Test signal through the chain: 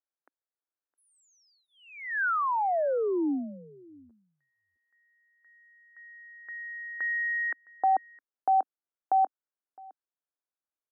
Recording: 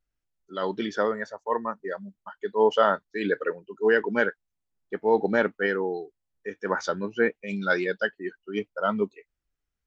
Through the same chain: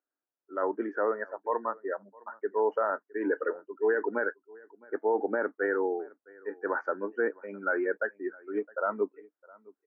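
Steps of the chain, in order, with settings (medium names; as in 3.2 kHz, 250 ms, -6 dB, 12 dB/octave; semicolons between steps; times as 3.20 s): elliptic band-pass 280–1600 Hz, stop band 40 dB; peak limiter -18 dBFS; delay 662 ms -24 dB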